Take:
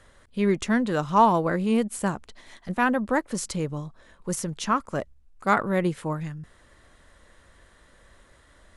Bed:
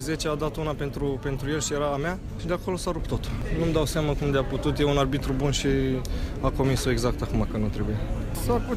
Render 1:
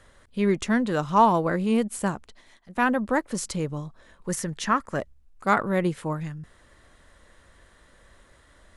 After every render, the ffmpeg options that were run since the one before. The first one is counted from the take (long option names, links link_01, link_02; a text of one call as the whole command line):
ffmpeg -i in.wav -filter_complex "[0:a]asettb=1/sr,asplit=3[link_01][link_02][link_03];[link_01]atrim=end=4.294[link_04];[link_02]atrim=start=4.29:end=4.98,asetpts=PTS-STARTPTS,afade=type=in:duration=0.004:curve=qsin,afade=type=out:start_time=0.686:duration=0.004:curve=qsin,equalizer=frequency=1800:width_type=o:width=0.31:gain=10[link_05];[link_03]atrim=start=4.976[link_06];[link_04][link_05]acrossfade=duration=0.004:curve1=hsin:curve2=qsin[link_07];[link_07][link_06]acrossfade=duration=0.004:curve1=qsin:curve2=hsin,asplit=2[link_08][link_09];[link_08]atrim=end=2.75,asetpts=PTS-STARTPTS,afade=type=out:start_time=2.06:duration=0.69:silence=0.141254[link_10];[link_09]atrim=start=2.75,asetpts=PTS-STARTPTS,afade=type=in:duration=0.004:curve=hsin:silence=0.141254[link_11];[link_10][link_11]concat=n=2:v=0:a=1" out.wav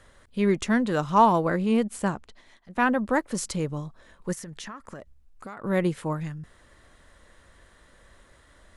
ffmpeg -i in.wav -filter_complex "[0:a]asettb=1/sr,asplit=3[link_01][link_02][link_03];[link_01]atrim=end=1.574[link_04];[link_02]atrim=start=1.57:end=2.98,asetpts=PTS-STARTPTS,afade=type=in:duration=0.004:curve=qsin,afade=type=out:start_time=1.406:duration=0.004:curve=qsin,highshelf=frequency=9400:gain=-9.5[link_05];[link_03]atrim=start=2.976[link_06];[link_04][link_05]acrossfade=duration=0.004:curve1=hsin:curve2=qsin[link_07];[link_07][link_06]acrossfade=duration=0.004:curve1=qsin:curve2=hsin,asplit=3[link_08][link_09][link_10];[link_08]afade=type=out:start_time=4.32:duration=0.02[link_11];[link_09]acompressor=threshold=-35dB:ratio=16:attack=3.2:release=140:knee=1:detection=peak,afade=type=in:start_time=4.32:duration=0.02,afade=type=out:start_time=5.63:duration=0.02[link_12];[link_10]afade=type=in:start_time=5.63:duration=0.02[link_13];[link_11][link_12][link_13]amix=inputs=3:normalize=0" out.wav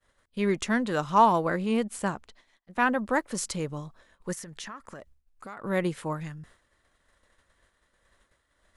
ffmpeg -i in.wav -af "agate=range=-33dB:threshold=-46dB:ratio=3:detection=peak,lowshelf=frequency=480:gain=-5" out.wav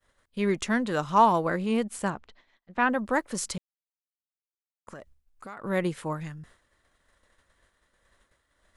ffmpeg -i in.wav -filter_complex "[0:a]asettb=1/sr,asplit=3[link_01][link_02][link_03];[link_01]atrim=end=2.104[link_04];[link_02]atrim=start=2.1:end=2.9,asetpts=PTS-STARTPTS,afade=type=in:duration=0.004:curve=qsin,afade=type=out:start_time=0.796:duration=0.004:curve=qsin,lowpass=4100[link_05];[link_03]atrim=start=2.896[link_06];[link_04][link_05]acrossfade=duration=0.004:curve1=hsin:curve2=qsin[link_07];[link_07][link_06]acrossfade=duration=0.004:curve1=qsin:curve2=hsin,asplit=3[link_08][link_09][link_10];[link_08]atrim=end=3.58,asetpts=PTS-STARTPTS,afade=type=out:start_time=3.576:duration=0.004:curve=hsin[link_11];[link_09]atrim=start=3.58:end=4.87,asetpts=PTS-STARTPTS,volume=0[link_12];[link_10]atrim=start=4.87,asetpts=PTS-STARTPTS,afade=type=in:duration=0.004:curve=hsin[link_13];[link_11][link_12][link_13]concat=n=3:v=0:a=1" out.wav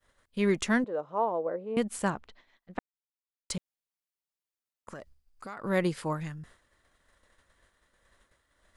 ffmpeg -i in.wav -filter_complex "[0:a]asettb=1/sr,asplit=3[link_01][link_02][link_03];[link_01]atrim=end=0.844[link_04];[link_02]atrim=start=0.84:end=1.77,asetpts=PTS-STARTPTS,afade=type=in:duration=0.004:curve=qsin,afade=type=out:start_time=0.926:duration=0.004:curve=qsin,bandpass=frequency=520:width_type=q:width=2.9[link_05];[link_03]atrim=start=1.766[link_06];[link_04][link_05]acrossfade=duration=0.004:curve1=hsin:curve2=qsin[link_07];[link_07][link_06]acrossfade=duration=0.004:curve1=qsin:curve2=hsin,asettb=1/sr,asplit=3[link_08][link_09][link_10];[link_08]atrim=end=4.964[link_11];[link_09]atrim=start=4.96:end=6.11,asetpts=PTS-STARTPTS,afade=type=in:duration=0.004:curve=qsin,afade=type=out:start_time=1.146:duration=0.004:curve=qsin,equalizer=frequency=4800:width_type=o:width=0.22:gain=9[link_12];[link_10]atrim=start=6.106[link_13];[link_11][link_12]acrossfade=duration=0.004:curve1=hsin:curve2=qsin[link_14];[link_14][link_13]acrossfade=duration=0.004:curve1=qsin:curve2=hsin,asplit=3[link_15][link_16][link_17];[link_15]atrim=end=2.79,asetpts=PTS-STARTPTS,afade=type=out:start_time=2.786:duration=0.004:curve=hsin[link_18];[link_16]atrim=start=2.79:end=3.5,asetpts=PTS-STARTPTS,volume=0[link_19];[link_17]atrim=start=3.5,asetpts=PTS-STARTPTS,afade=type=in:duration=0.004:curve=hsin[link_20];[link_18][link_19][link_20]concat=n=3:v=0:a=1" out.wav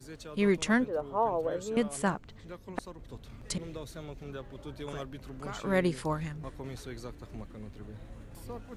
ffmpeg -i in.wav -i bed.wav -filter_complex "[1:a]volume=-18dB[link_01];[0:a][link_01]amix=inputs=2:normalize=0" out.wav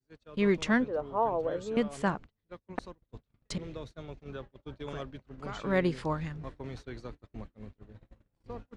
ffmpeg -i in.wav -af "agate=range=-34dB:threshold=-42dB:ratio=16:detection=peak,lowpass=5000" out.wav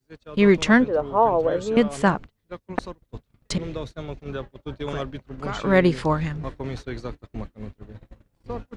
ffmpeg -i in.wav -af "volume=10dB" out.wav